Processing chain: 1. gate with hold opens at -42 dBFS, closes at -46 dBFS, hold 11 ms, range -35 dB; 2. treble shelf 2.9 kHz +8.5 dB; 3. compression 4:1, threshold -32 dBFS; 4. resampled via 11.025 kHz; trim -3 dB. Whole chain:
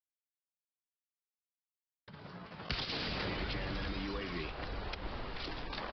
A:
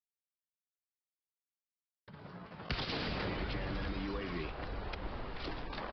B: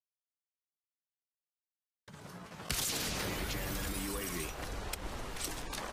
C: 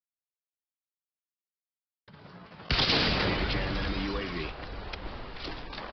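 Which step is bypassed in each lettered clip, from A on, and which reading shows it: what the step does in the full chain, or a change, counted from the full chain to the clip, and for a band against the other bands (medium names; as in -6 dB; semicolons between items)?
2, 4 kHz band -4.0 dB; 4, crest factor change +1.5 dB; 3, 4 kHz band +2.5 dB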